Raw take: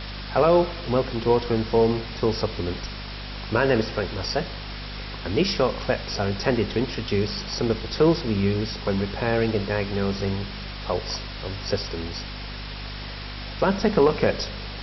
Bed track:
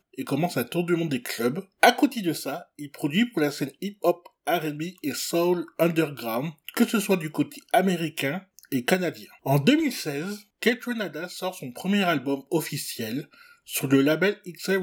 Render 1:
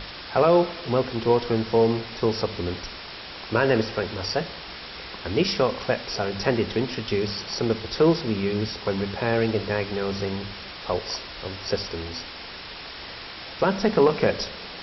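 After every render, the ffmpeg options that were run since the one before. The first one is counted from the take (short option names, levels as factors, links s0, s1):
-af "bandreject=f=50:t=h:w=6,bandreject=f=100:t=h:w=6,bandreject=f=150:t=h:w=6,bandreject=f=200:t=h:w=6,bandreject=f=250:t=h:w=6"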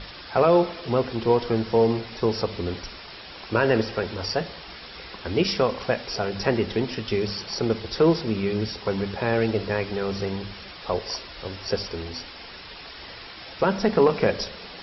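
-af "afftdn=nr=6:nf=-39"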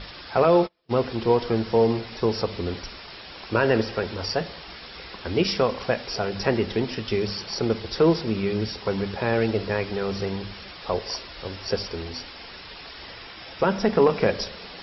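-filter_complex "[0:a]asettb=1/sr,asplit=3[s0][s1][s2];[s0]atrim=end=0.444[s3];[s1]atrim=start=0.44:end=1.02,asetpts=PTS-STARTPTS,afade=t=in:d=0.004:c=qsin,afade=t=out:st=0.576:d=0.004:c=qsin,agate=range=0.0158:threshold=0.0398:ratio=16:release=100:detection=peak[s4];[s2]atrim=start=1.016[s5];[s3][s4]acrossfade=d=0.004:c1=hsin:c2=qsin[s6];[s6][s5]acrossfade=d=0.004:c1=qsin:c2=hsin,asettb=1/sr,asplit=3[s7][s8][s9];[s7]atrim=end=13.114[s10];[s8]atrim=start=13.11:end=14.18,asetpts=PTS-STARTPTS,afade=t=in:d=0.004:c=qsin,afade=t=out:st=1.066:d=0.004:c=qsin,bandreject=f=4300:w=12[s11];[s9]atrim=start=14.176[s12];[s10][s11]acrossfade=d=0.004:c1=hsin:c2=qsin[s13];[s13][s12]acrossfade=d=0.004:c1=qsin:c2=hsin"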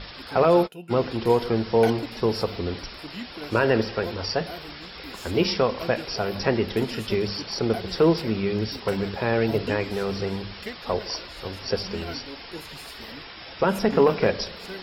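-filter_complex "[1:a]volume=0.188[s0];[0:a][s0]amix=inputs=2:normalize=0"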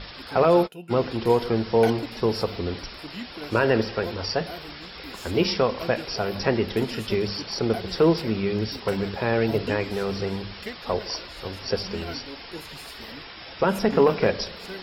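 -af anull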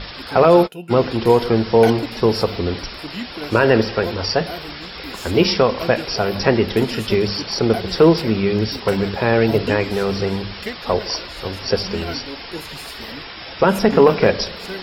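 -af "volume=2.24,alimiter=limit=0.794:level=0:latency=1"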